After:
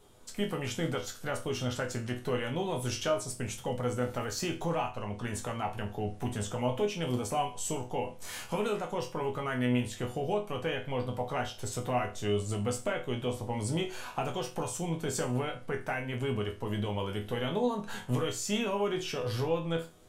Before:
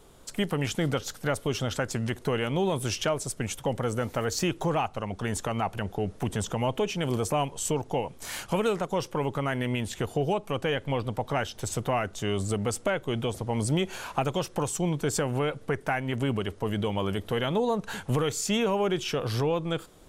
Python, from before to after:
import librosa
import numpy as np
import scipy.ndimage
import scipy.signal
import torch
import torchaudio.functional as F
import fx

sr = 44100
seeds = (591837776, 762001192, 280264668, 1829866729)

y = fx.resonator_bank(x, sr, root=40, chord='major', decay_s=0.32)
y = y * librosa.db_to_amplitude(7.5)